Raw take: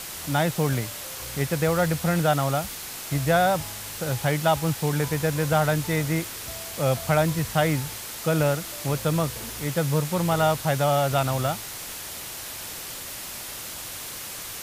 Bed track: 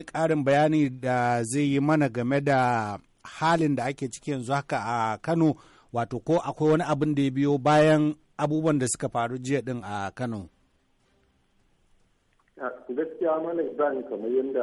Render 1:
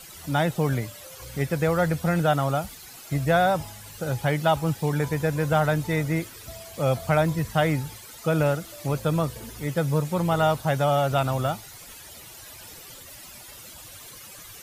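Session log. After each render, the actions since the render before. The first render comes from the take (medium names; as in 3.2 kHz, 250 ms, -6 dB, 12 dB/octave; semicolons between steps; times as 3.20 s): noise reduction 13 dB, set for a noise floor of -37 dBFS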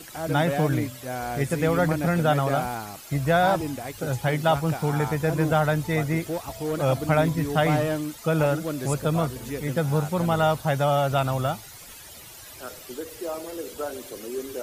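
add bed track -7 dB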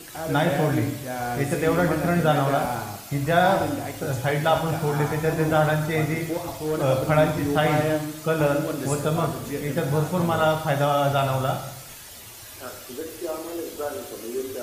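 plate-style reverb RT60 0.84 s, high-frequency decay 1×, DRR 3 dB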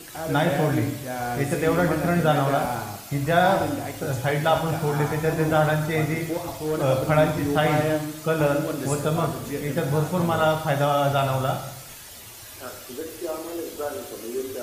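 no audible change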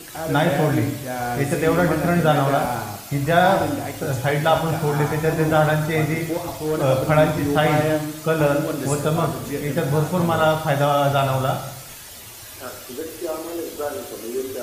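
trim +3 dB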